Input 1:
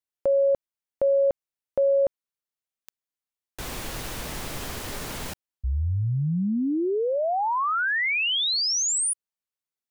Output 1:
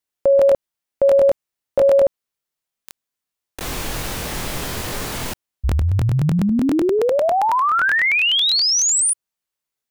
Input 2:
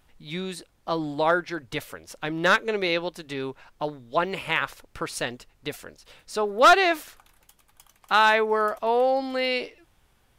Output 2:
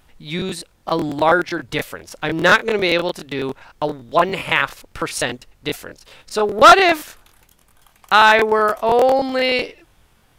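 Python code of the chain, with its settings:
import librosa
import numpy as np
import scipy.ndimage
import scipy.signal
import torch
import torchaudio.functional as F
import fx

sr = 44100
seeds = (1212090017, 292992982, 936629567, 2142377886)

y = fx.buffer_crackle(x, sr, first_s=0.37, period_s=0.1, block=1024, kind='repeat')
y = F.gain(torch.from_numpy(y), 7.5).numpy()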